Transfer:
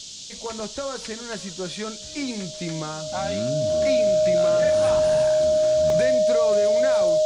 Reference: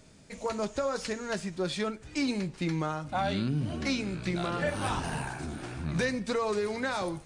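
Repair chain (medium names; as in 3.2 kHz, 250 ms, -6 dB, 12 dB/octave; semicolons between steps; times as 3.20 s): band-stop 620 Hz, Q 30; interpolate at 0.60/5.90 s, 1.5 ms; noise print and reduce 8 dB; inverse comb 567 ms -21 dB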